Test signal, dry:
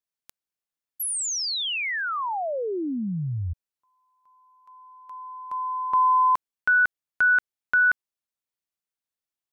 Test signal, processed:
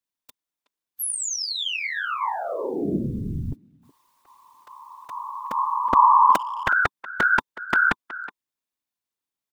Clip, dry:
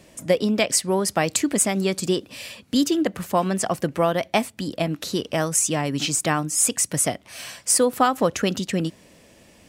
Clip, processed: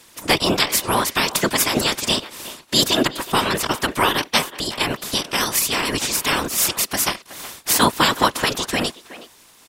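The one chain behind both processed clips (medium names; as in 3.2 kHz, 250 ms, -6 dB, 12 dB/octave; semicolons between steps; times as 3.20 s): spectral peaks clipped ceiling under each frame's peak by 28 dB; small resonant body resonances 270/1000/3600 Hz, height 7 dB, ringing for 35 ms; whisper effect; speakerphone echo 370 ms, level -15 dB; trim +1.5 dB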